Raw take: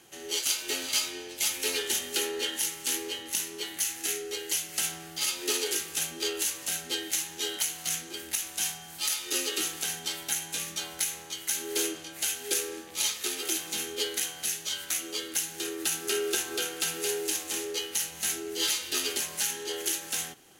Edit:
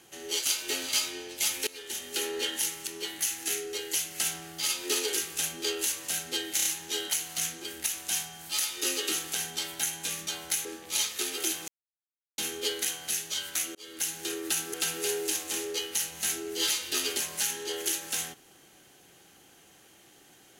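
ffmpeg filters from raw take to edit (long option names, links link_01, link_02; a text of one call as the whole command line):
ffmpeg -i in.wav -filter_complex "[0:a]asplit=10[link_01][link_02][link_03][link_04][link_05][link_06][link_07][link_08][link_09][link_10];[link_01]atrim=end=1.67,asetpts=PTS-STARTPTS,afade=type=out:start_time=1.666:duration=0.004:curve=hsin:silence=0.0841395[link_11];[link_02]atrim=start=1.67:end=2.872,asetpts=PTS-STARTPTS,afade=type=in:duration=0.7:silence=0.0841395[link_12];[link_03]atrim=start=3.448:end=7.172[link_13];[link_04]atrim=start=7.138:end=7.172[link_14];[link_05]atrim=start=7.138:end=7.172[link_15];[link_06]atrim=start=7.138:end=11.142[link_16];[link_07]atrim=start=12.698:end=13.73,asetpts=PTS-STARTPTS,afade=type=out:start_time=1.028:duration=0.004:curve=hsin,apad=pad_dur=0.7[link_17];[link_08]atrim=start=13.73:end=15.1,asetpts=PTS-STARTPTS,afade=type=in:duration=0.004:curve=hsin,afade=type=out:start_time=1.366:duration=0.004:curve=hsin[link_18];[link_09]atrim=start=15.1:end=16.092,asetpts=PTS-STARTPTS,afade=type=in:duration=0.34[link_19];[link_10]atrim=start=16.738[link_20];[link_11][link_12]concat=n=2:v=0:a=1[link_21];[link_21][link_13]acrossfade=duration=0.004:curve1=hsin:curve2=hsin[link_22];[link_22][link_14]acrossfade=duration=0.004:curve1=hsin:curve2=hsin[link_23];[link_23][link_15]acrossfade=duration=0.004:curve1=hsin:curve2=hsin[link_24];[link_24][link_16]acrossfade=duration=0.004:curve1=hsin:curve2=hsin[link_25];[link_17][link_18][link_19]concat=n=3:v=0:a=1[link_26];[link_25][link_26]acrossfade=duration=0.004:curve1=hsin:curve2=hsin[link_27];[link_27][link_20]acrossfade=duration=0.004:curve1=hsin:curve2=hsin" out.wav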